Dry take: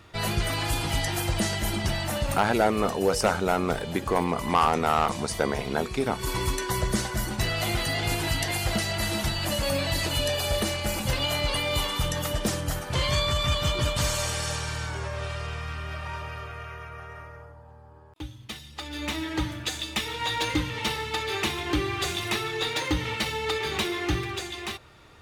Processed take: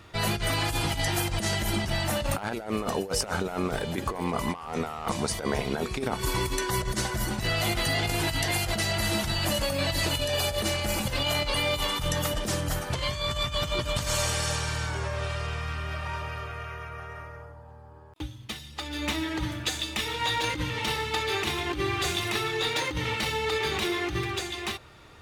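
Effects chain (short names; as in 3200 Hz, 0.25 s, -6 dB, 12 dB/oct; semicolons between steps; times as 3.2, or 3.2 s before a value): negative-ratio compressor -27 dBFS, ratio -0.5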